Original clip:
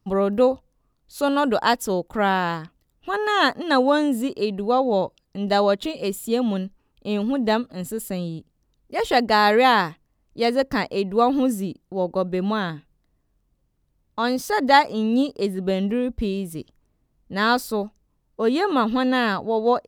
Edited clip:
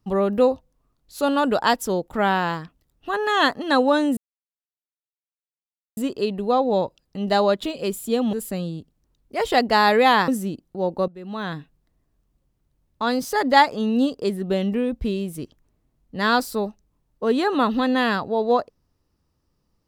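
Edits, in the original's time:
0:04.17: splice in silence 1.80 s
0:06.53–0:07.92: remove
0:09.87–0:11.45: remove
0:12.25–0:12.73: fade in quadratic, from −16.5 dB

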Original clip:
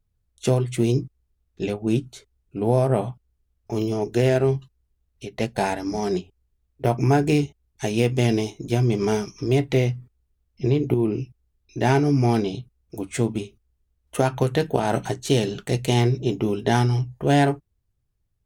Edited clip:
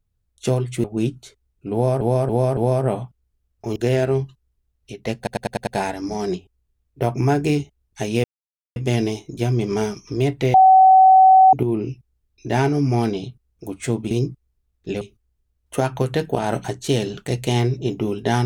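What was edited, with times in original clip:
0:00.84–0:01.74: move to 0:13.42
0:02.63–0:02.91: repeat, 4 plays
0:03.82–0:04.09: remove
0:05.50: stutter 0.10 s, 6 plays
0:08.07: splice in silence 0.52 s
0:09.85–0:10.84: beep over 758 Hz −7 dBFS

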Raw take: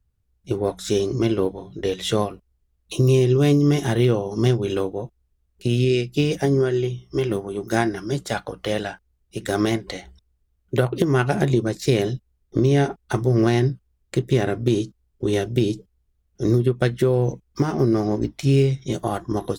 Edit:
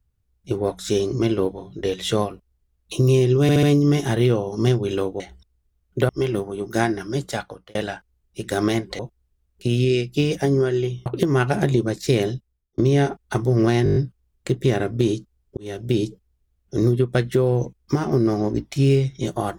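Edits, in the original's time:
0:03.42: stutter 0.07 s, 4 plays
0:04.99–0:07.06: swap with 0:09.96–0:10.85
0:08.26–0:08.72: fade out
0:12.04–0:12.57: fade out
0:13.63: stutter 0.02 s, 7 plays
0:15.24–0:15.64: fade in

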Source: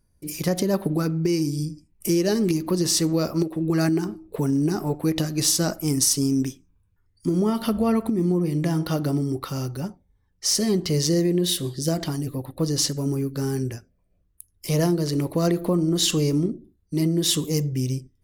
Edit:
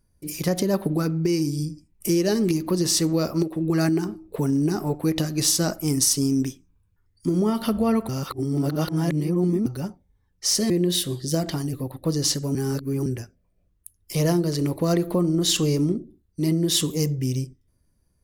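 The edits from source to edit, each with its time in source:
0:08.09–0:09.66: reverse
0:10.70–0:11.24: remove
0:13.09–0:13.60: reverse

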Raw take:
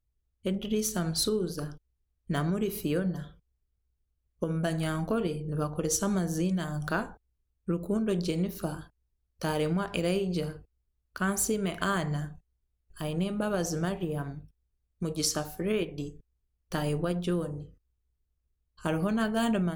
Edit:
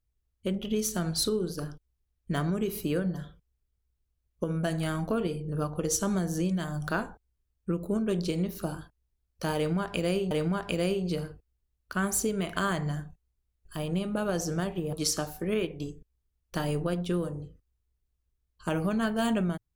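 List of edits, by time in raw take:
0:09.56–0:10.31: repeat, 2 plays
0:14.18–0:15.11: remove

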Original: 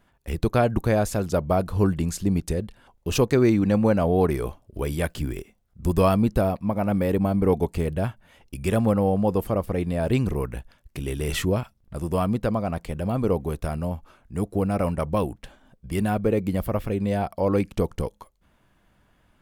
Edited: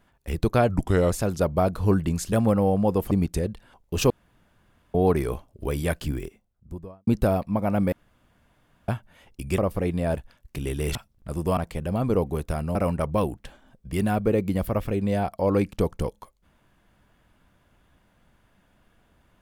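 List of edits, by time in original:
0:00.69–0:01.04: play speed 83%
0:03.24–0:04.08: fill with room tone
0:05.17–0:06.21: fade out and dull
0:07.06–0:08.02: fill with room tone
0:08.72–0:09.51: move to 0:02.25
0:10.10–0:10.58: remove
0:11.36–0:11.61: remove
0:12.23–0:12.71: remove
0:13.89–0:14.74: remove

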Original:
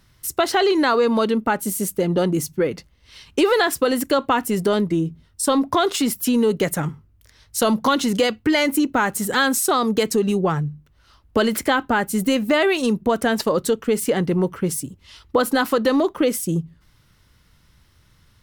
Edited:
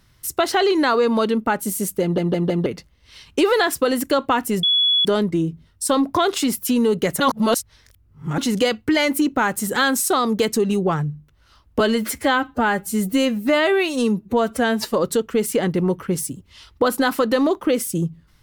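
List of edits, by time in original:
0:02.02: stutter in place 0.16 s, 4 plays
0:04.63: insert tone 3,390 Hz −14 dBFS 0.42 s
0:06.78–0:07.96: reverse
0:11.38–0:13.47: time-stretch 1.5×

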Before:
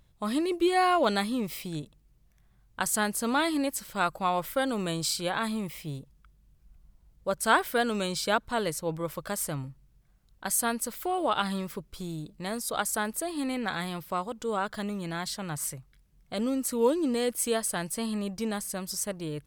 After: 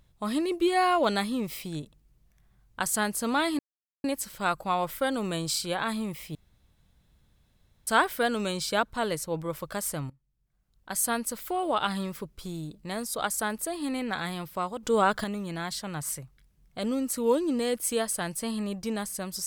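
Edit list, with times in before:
0:03.59: splice in silence 0.45 s
0:05.90–0:07.42: fill with room tone
0:09.65–0:10.58: fade in quadratic, from −19 dB
0:14.38–0:14.79: clip gain +7 dB

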